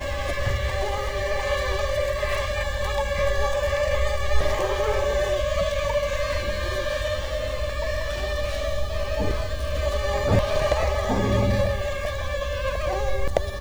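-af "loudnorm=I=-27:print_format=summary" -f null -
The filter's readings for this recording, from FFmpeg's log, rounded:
Input Integrated:    -25.4 LUFS
Input True Peak:      -4.8 dBTP
Input LRA:             3.1 LU
Input Threshold:     -35.4 LUFS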